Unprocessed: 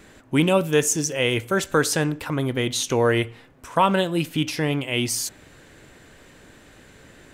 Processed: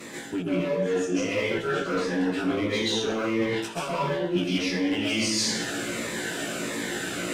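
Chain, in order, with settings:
every overlapping window played backwards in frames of 35 ms
gain on a spectral selection 0:03.43–0:03.95, 2,200–5,300 Hz +8 dB
harmonic generator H 5 −6 dB, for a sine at −7 dBFS
high-pass filter 200 Hz 12 dB per octave
treble cut that deepens with the level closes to 2,100 Hz, closed at −13 dBFS
in parallel at −10 dB: wave folding −18 dBFS
on the sum: dense smooth reverb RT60 0.7 s, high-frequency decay 0.9×, pre-delay 115 ms, DRR −9.5 dB
reversed playback
downward compressor 10 to 1, threshold −24 dBFS, peak gain reduction 22.5 dB
reversed playback
phaser whose notches keep moving one way falling 1.5 Hz
level +1.5 dB

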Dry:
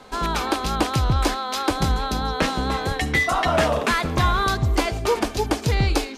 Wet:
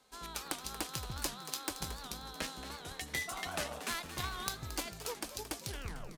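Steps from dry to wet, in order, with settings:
turntable brake at the end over 0.56 s
first-order pre-emphasis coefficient 0.8
harmonic generator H 3 −11 dB, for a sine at −14 dBFS
on a send: echo with shifted repeats 225 ms, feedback 51%, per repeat +110 Hz, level −12 dB
on the sum: wow of a warped record 78 rpm, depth 160 cents
level +4.5 dB

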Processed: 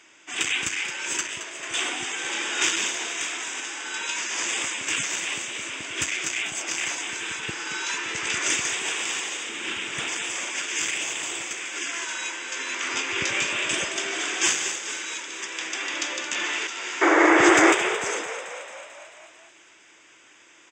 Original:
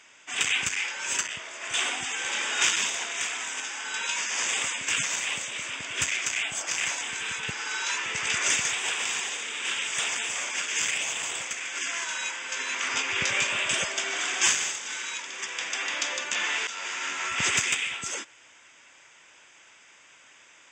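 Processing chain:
0:09.49–0:10.08: bass and treble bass +12 dB, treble −7 dB
0:17.01–0:17.73: sound drawn into the spectrogram noise 290–2,300 Hz −19 dBFS
parametric band 330 Hz +13.5 dB 0.36 octaves
on a send: echo with shifted repeats 221 ms, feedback 64%, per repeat +41 Hz, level −11 dB

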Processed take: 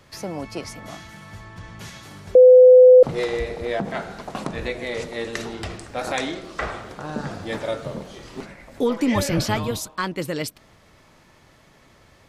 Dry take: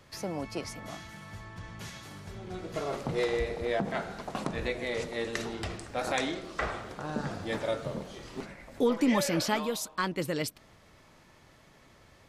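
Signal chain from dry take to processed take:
0:02.35–0:03.03: beep over 506 Hz −10 dBFS
0:09.15–0:09.91: sub-octave generator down 1 octave, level +2 dB
level +4.5 dB

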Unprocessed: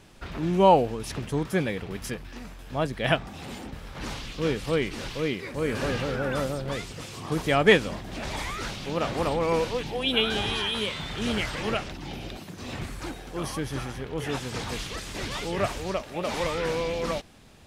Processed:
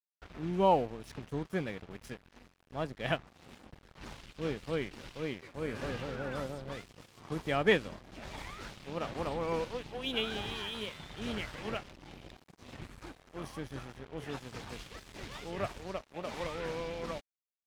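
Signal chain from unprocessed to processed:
dead-zone distortion −38.5 dBFS
high-shelf EQ 5,400 Hz −7 dB
level −7.5 dB

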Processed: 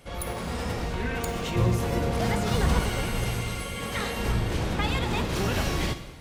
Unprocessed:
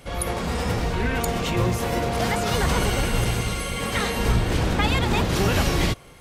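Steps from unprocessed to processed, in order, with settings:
stylus tracing distortion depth 0.027 ms
0:01.55–0:02.80: low-shelf EQ 320 Hz +6.5 dB
dense smooth reverb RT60 1.3 s, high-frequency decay 0.9×, DRR 8 dB
level −6 dB

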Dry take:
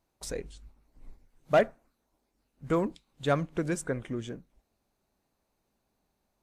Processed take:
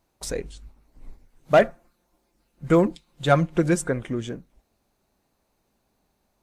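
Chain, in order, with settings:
0:01.61–0:03.89: comb filter 5.7 ms, depth 59%
level +6.5 dB

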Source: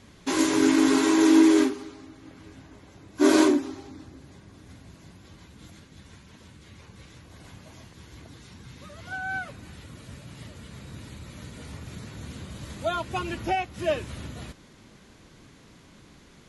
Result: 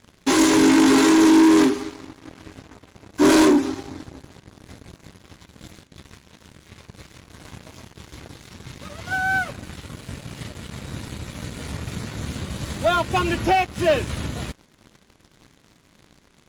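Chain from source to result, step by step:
leveller curve on the samples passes 3
level −1.5 dB

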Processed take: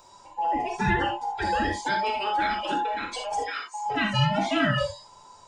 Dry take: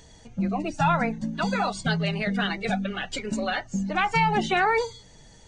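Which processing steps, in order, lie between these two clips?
frequency inversion band by band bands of 1,000 Hz
0:03.42–0:03.86: high-pass filter 1,100 Hz 12 dB per octave
reverb whose tail is shaped and stops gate 100 ms flat, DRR 0.5 dB
level −4 dB

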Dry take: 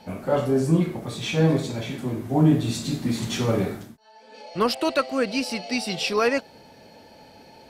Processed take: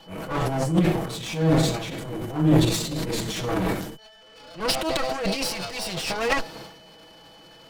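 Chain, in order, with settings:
lower of the sound and its delayed copy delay 6.2 ms
transient designer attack −10 dB, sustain +11 dB
steady tone 3,000 Hz −52 dBFS

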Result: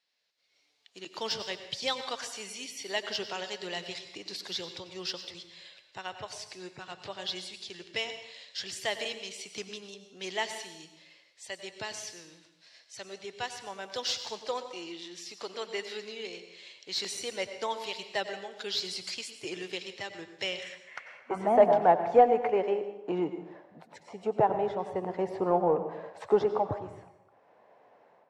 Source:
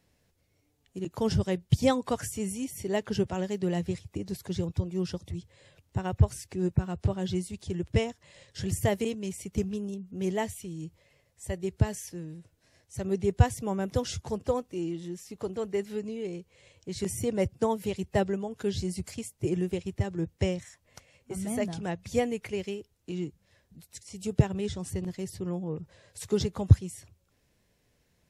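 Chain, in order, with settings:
high-pass filter 83 Hz
automatic gain control gain up to 15.5 dB
band-pass filter sweep 4,300 Hz → 800 Hz, 0:20.41–0:21.53
in parallel at −11 dB: soft clipping −28.5 dBFS, distortion −6 dB
on the sum: mid-hump overdrive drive 15 dB, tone 1,000 Hz, clips at −4.5 dBFS
on a send at −9 dB: convolution reverb RT60 0.90 s, pre-delay 83 ms

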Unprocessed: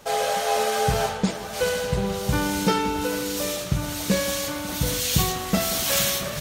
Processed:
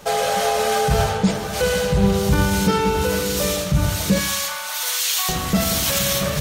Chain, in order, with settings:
0:04.18–0:05.29: high-pass filter 810 Hz 24 dB per octave
brickwall limiter −16.5 dBFS, peak gain reduction 8 dB
on a send: convolution reverb RT60 0.70 s, pre-delay 3 ms, DRR 12 dB
on the sum: level +5.5 dB

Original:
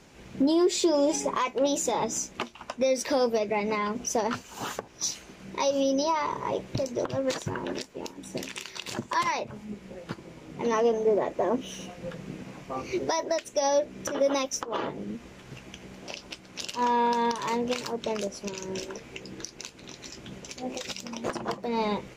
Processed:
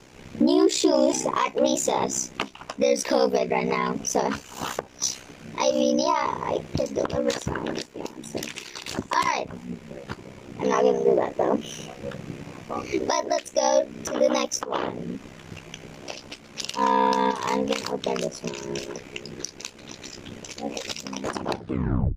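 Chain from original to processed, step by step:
turntable brake at the end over 0.76 s
ring modulation 32 Hz
level +6.5 dB

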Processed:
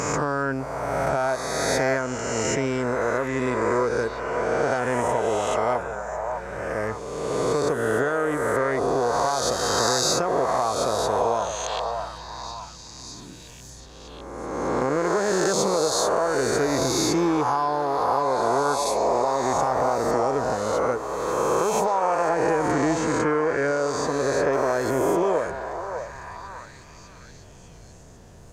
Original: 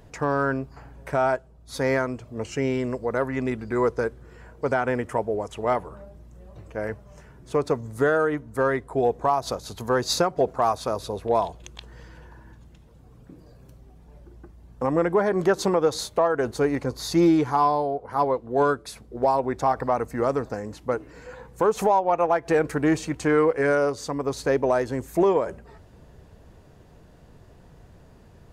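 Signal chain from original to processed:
peak hold with a rise ahead of every peak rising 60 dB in 1.84 s
parametric band 6,800 Hz +9 dB 0.79 octaves
downward compressor, threshold −19 dBFS, peak gain reduction 7.5 dB
0:22.29–0:24.53: high-shelf EQ 5,000 Hz −11.5 dB
echo through a band-pass that steps 603 ms, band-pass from 740 Hz, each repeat 0.7 octaves, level −4 dB

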